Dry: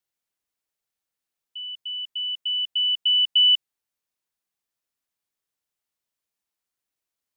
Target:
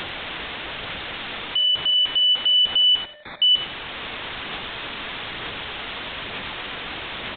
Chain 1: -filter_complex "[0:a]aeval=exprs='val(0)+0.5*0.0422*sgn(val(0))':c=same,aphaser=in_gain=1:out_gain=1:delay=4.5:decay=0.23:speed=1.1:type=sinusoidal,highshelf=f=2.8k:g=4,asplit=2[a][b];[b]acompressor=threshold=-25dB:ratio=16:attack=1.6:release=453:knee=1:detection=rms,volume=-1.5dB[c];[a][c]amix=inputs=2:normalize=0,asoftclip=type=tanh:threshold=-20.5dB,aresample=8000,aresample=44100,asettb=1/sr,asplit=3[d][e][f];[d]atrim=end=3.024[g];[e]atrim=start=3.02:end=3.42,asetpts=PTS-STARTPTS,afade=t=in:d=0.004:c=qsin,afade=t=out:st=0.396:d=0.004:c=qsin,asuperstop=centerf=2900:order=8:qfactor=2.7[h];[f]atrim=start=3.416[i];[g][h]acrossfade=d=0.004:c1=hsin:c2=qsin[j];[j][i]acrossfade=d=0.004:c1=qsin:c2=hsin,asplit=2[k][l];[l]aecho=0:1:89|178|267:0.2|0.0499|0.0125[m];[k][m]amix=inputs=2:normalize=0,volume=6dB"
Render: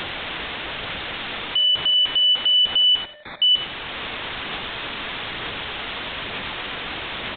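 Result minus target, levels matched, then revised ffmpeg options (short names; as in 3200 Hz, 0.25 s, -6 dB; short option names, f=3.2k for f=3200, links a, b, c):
compressor: peak gain reduction -8 dB
-filter_complex "[0:a]aeval=exprs='val(0)+0.5*0.0422*sgn(val(0))':c=same,aphaser=in_gain=1:out_gain=1:delay=4.5:decay=0.23:speed=1.1:type=sinusoidal,highshelf=f=2.8k:g=4,asplit=2[a][b];[b]acompressor=threshold=-33.5dB:ratio=16:attack=1.6:release=453:knee=1:detection=rms,volume=-1.5dB[c];[a][c]amix=inputs=2:normalize=0,asoftclip=type=tanh:threshold=-20.5dB,aresample=8000,aresample=44100,asettb=1/sr,asplit=3[d][e][f];[d]atrim=end=3.024[g];[e]atrim=start=3.02:end=3.42,asetpts=PTS-STARTPTS,afade=t=in:d=0.004:c=qsin,afade=t=out:st=0.396:d=0.004:c=qsin,asuperstop=centerf=2900:order=8:qfactor=2.7[h];[f]atrim=start=3.416[i];[g][h]acrossfade=d=0.004:c1=hsin:c2=qsin[j];[j][i]acrossfade=d=0.004:c1=qsin:c2=hsin,asplit=2[k][l];[l]aecho=0:1:89|178|267:0.2|0.0499|0.0125[m];[k][m]amix=inputs=2:normalize=0,volume=6dB"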